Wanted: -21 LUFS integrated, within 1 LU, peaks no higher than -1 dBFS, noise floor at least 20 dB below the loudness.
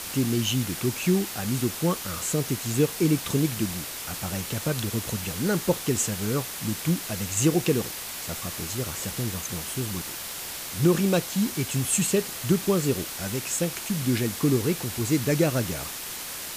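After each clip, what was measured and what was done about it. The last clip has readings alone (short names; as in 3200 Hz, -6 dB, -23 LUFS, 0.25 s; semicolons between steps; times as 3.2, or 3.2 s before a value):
noise floor -36 dBFS; noise floor target -47 dBFS; loudness -26.5 LUFS; peak -9.0 dBFS; loudness target -21.0 LUFS
-> denoiser 11 dB, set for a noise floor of -36 dBFS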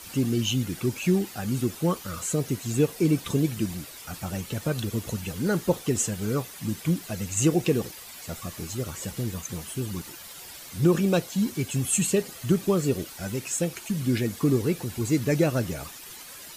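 noise floor -43 dBFS; noise floor target -47 dBFS
-> denoiser 6 dB, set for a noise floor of -43 dBFS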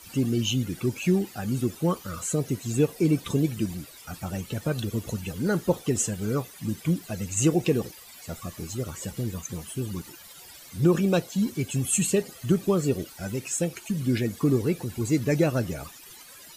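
noise floor -47 dBFS; loudness -27.0 LUFS; peak -9.5 dBFS; loudness target -21.0 LUFS
-> gain +6 dB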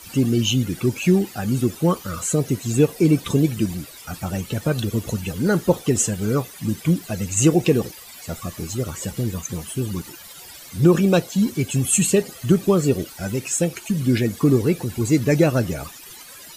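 loudness -21.0 LUFS; peak -3.5 dBFS; noise floor -41 dBFS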